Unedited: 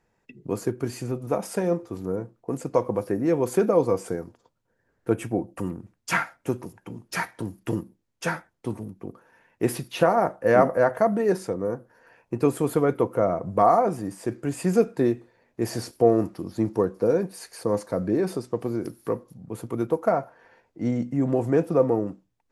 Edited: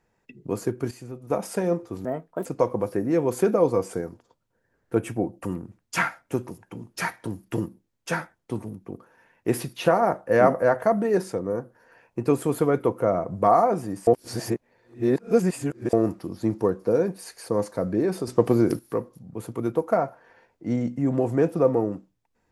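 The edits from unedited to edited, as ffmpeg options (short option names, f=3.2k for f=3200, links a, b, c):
-filter_complex "[0:a]asplit=9[a][b][c][d][e][f][g][h][i];[a]atrim=end=0.912[j];[b]atrim=start=0.908:end=1.302,asetpts=PTS-STARTPTS,volume=-8.5dB[k];[c]atrim=start=1.298:end=2.054[l];[d]atrim=start=2.05:end=2.6,asetpts=PTS-STARTPTS,asetrate=60417,aresample=44100,atrim=end_sample=17704,asetpts=PTS-STARTPTS[m];[e]atrim=start=2.596:end=14.222[n];[f]atrim=start=14.218:end=16.082,asetpts=PTS-STARTPTS,areverse[o];[g]atrim=start=16.078:end=18.422[p];[h]atrim=start=18.418:end=18.942,asetpts=PTS-STARTPTS,volume=8.5dB[q];[i]atrim=start=18.938[r];[j][k]acrossfade=d=0.004:c1=hsin:c2=hsin[s];[s][l]acrossfade=d=0.004:c1=hsin:c2=hsin[t];[t][m]acrossfade=d=0.004:c1=hsin:c2=hsin[u];[u][n]acrossfade=d=0.004:c1=hsin:c2=hsin[v];[v][o]acrossfade=d=0.004:c1=hsin:c2=hsin[w];[w][p]acrossfade=d=0.004:c1=hsin:c2=hsin[x];[x][q]acrossfade=d=0.004:c1=hsin:c2=hsin[y];[y][r]acrossfade=d=0.004:c1=hsin:c2=hsin"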